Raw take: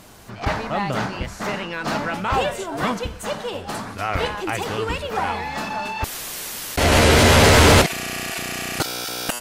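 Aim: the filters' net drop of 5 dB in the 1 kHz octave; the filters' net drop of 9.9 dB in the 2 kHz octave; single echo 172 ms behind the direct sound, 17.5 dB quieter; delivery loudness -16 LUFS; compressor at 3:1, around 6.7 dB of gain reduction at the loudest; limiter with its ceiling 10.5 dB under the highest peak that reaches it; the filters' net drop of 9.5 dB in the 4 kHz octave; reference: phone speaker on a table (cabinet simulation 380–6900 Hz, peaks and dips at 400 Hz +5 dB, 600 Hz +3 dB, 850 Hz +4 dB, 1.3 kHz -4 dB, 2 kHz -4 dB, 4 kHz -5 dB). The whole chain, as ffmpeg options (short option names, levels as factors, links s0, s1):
-af "equalizer=f=1000:t=o:g=-8,equalizer=f=2000:t=o:g=-5,equalizer=f=4000:t=o:g=-8,acompressor=threshold=0.1:ratio=3,alimiter=limit=0.0794:level=0:latency=1,highpass=f=380:w=0.5412,highpass=f=380:w=1.3066,equalizer=f=400:t=q:w=4:g=5,equalizer=f=600:t=q:w=4:g=3,equalizer=f=850:t=q:w=4:g=4,equalizer=f=1300:t=q:w=4:g=-4,equalizer=f=2000:t=q:w=4:g=-4,equalizer=f=4000:t=q:w=4:g=-5,lowpass=f=6900:w=0.5412,lowpass=f=6900:w=1.3066,aecho=1:1:172:0.133,volume=7.08"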